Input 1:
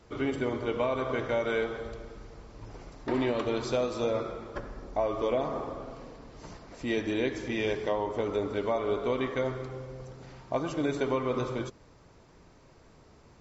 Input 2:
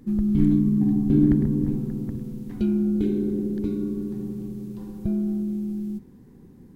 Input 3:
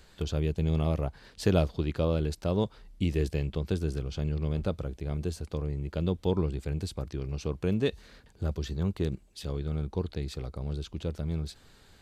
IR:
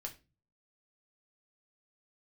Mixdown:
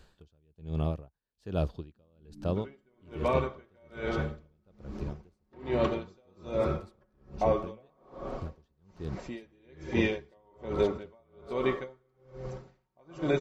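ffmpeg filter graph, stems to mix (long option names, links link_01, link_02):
-filter_complex "[0:a]aecho=1:1:5.4:0.49,dynaudnorm=framelen=110:gausssize=11:maxgain=8.5dB,alimiter=limit=-11dB:level=0:latency=1:release=344,adelay=2450,volume=-3.5dB[link_01];[1:a]acompressor=threshold=-32dB:ratio=6,adelay=1900,volume=-7.5dB[link_02];[2:a]bandreject=frequency=2100:width=6.4,volume=-1dB[link_03];[link_01][link_02][link_03]amix=inputs=3:normalize=0,highshelf=frequency=3700:gain=-7,aeval=exprs='val(0)*pow(10,-39*(0.5-0.5*cos(2*PI*1.2*n/s))/20)':channel_layout=same"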